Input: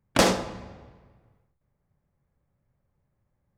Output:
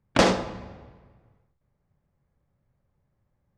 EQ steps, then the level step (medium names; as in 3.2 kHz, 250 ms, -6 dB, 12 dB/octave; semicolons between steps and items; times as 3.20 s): distance through air 79 m; +1.5 dB